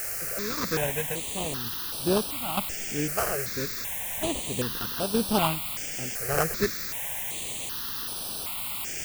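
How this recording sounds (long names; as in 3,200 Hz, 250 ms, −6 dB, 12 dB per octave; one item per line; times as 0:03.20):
aliases and images of a low sample rate 2,100 Hz, jitter 20%
sample-and-hold tremolo, depth 70%
a quantiser's noise floor 6 bits, dither triangular
notches that jump at a steady rate 2.6 Hz 960–7,000 Hz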